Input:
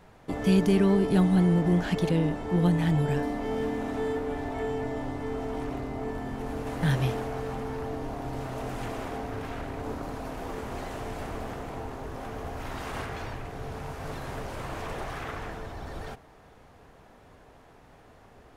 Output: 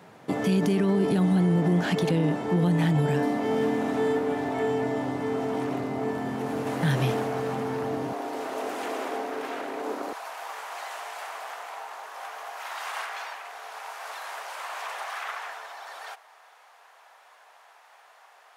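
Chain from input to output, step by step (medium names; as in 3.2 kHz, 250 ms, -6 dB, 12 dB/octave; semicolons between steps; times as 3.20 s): high-pass 130 Hz 24 dB/octave, from 8.13 s 300 Hz, from 10.13 s 760 Hz; peak limiter -20.5 dBFS, peak gain reduction 9 dB; trim +5 dB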